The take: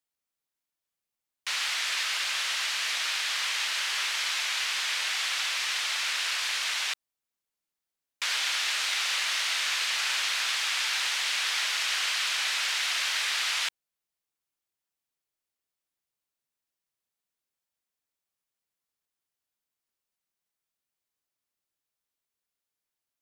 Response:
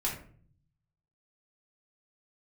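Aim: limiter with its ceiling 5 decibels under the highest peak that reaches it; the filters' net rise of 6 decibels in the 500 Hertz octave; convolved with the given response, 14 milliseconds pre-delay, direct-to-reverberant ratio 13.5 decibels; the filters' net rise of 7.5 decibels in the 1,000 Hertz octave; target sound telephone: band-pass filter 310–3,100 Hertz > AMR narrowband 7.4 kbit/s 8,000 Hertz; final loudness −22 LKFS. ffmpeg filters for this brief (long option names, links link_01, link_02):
-filter_complex "[0:a]equalizer=frequency=500:width_type=o:gain=4.5,equalizer=frequency=1000:width_type=o:gain=9,alimiter=limit=-18.5dB:level=0:latency=1,asplit=2[link_01][link_02];[1:a]atrim=start_sample=2205,adelay=14[link_03];[link_02][link_03]afir=irnorm=-1:irlink=0,volume=-18.5dB[link_04];[link_01][link_04]amix=inputs=2:normalize=0,highpass=310,lowpass=3100,volume=11dB" -ar 8000 -c:a libopencore_amrnb -b:a 7400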